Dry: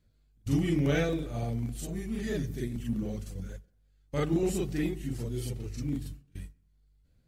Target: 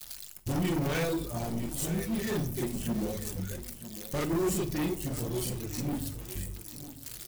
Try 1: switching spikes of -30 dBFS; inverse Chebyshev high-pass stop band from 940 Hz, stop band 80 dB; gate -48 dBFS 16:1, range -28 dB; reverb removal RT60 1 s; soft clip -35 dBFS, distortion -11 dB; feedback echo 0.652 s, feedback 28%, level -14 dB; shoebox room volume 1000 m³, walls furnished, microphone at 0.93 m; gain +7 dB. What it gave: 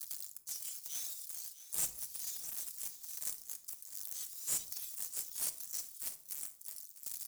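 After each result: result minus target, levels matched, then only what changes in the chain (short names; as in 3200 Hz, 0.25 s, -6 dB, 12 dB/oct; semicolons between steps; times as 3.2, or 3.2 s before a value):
1000 Hz band -15.0 dB; echo 0.299 s early
remove: inverse Chebyshev high-pass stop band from 940 Hz, stop band 80 dB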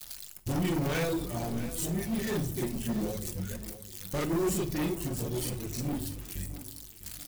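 echo 0.299 s early
change: feedback echo 0.951 s, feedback 28%, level -14 dB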